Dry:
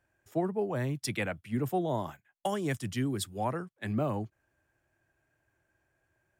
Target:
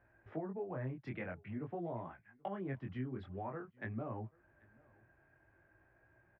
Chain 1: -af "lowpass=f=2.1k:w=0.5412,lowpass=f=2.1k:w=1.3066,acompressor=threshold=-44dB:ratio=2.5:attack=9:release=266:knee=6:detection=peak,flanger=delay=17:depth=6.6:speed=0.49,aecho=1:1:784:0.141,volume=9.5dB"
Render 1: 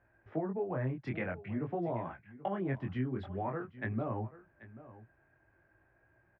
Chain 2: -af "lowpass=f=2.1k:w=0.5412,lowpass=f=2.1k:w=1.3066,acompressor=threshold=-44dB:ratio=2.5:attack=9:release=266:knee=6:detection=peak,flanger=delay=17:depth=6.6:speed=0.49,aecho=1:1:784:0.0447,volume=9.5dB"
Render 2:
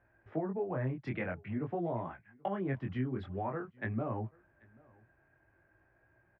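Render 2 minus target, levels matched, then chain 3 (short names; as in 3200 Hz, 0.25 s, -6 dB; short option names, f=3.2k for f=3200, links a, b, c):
compressor: peak gain reduction -6.5 dB
-af "lowpass=f=2.1k:w=0.5412,lowpass=f=2.1k:w=1.3066,acompressor=threshold=-54.5dB:ratio=2.5:attack=9:release=266:knee=6:detection=peak,flanger=delay=17:depth=6.6:speed=0.49,aecho=1:1:784:0.0447,volume=9.5dB"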